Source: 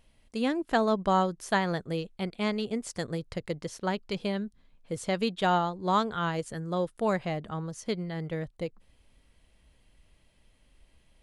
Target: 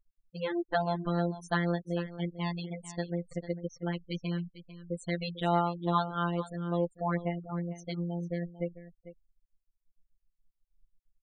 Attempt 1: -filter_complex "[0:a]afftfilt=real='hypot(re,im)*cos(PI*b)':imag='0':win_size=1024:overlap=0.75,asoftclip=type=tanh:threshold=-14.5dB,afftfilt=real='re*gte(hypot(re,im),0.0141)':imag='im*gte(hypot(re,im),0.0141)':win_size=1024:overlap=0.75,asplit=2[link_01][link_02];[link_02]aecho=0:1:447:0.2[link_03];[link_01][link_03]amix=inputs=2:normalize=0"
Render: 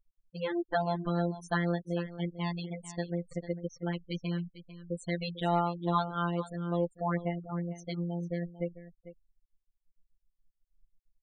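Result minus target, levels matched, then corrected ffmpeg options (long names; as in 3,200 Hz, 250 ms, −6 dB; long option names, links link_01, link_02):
soft clipping: distortion +11 dB
-filter_complex "[0:a]afftfilt=real='hypot(re,im)*cos(PI*b)':imag='0':win_size=1024:overlap=0.75,asoftclip=type=tanh:threshold=-8dB,afftfilt=real='re*gte(hypot(re,im),0.0141)':imag='im*gte(hypot(re,im),0.0141)':win_size=1024:overlap=0.75,asplit=2[link_01][link_02];[link_02]aecho=0:1:447:0.2[link_03];[link_01][link_03]amix=inputs=2:normalize=0"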